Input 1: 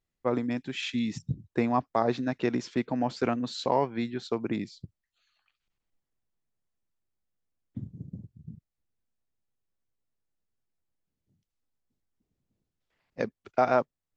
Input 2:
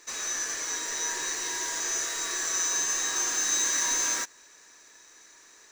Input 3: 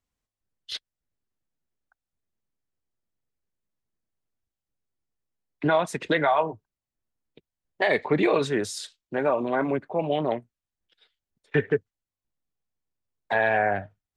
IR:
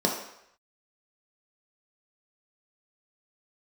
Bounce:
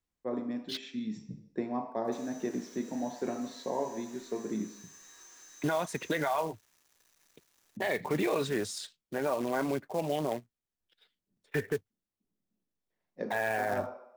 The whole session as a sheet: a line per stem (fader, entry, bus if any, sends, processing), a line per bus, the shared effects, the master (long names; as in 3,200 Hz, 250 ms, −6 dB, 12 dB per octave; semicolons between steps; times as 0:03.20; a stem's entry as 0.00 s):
−18.5 dB, 0.00 s, send −6 dB, no processing
−14.0 dB, 2.05 s, no send, downward compressor 10 to 1, threshold −38 dBFS, peak gain reduction 15.5 dB; bit-depth reduction 8 bits, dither none
−4.5 dB, 0.00 s, no send, floating-point word with a short mantissa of 2 bits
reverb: on, RT60 0.75 s, pre-delay 3 ms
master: brickwall limiter −21 dBFS, peak gain reduction 7.5 dB